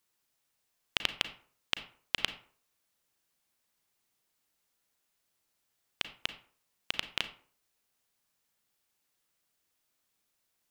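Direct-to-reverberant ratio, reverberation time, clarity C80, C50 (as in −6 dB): 10.0 dB, 0.50 s, 16.5 dB, 13.0 dB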